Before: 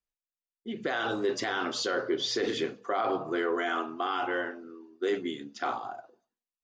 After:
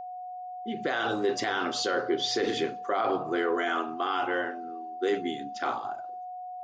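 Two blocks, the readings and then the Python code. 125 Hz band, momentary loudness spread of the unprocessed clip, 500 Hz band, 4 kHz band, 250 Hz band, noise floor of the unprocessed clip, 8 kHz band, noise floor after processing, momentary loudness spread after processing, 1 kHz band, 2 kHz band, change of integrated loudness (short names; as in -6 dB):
+1.5 dB, 10 LU, +1.5 dB, +1.5 dB, +1.5 dB, under -85 dBFS, +1.5 dB, -40 dBFS, 12 LU, +3.5 dB, +1.5 dB, +1.0 dB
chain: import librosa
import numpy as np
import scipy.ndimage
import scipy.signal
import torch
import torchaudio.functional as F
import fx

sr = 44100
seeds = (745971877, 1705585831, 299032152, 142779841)

y = x + 10.0 ** (-38.0 / 20.0) * np.sin(2.0 * np.pi * 730.0 * np.arange(len(x)) / sr)
y = F.gain(torch.from_numpy(y), 1.5).numpy()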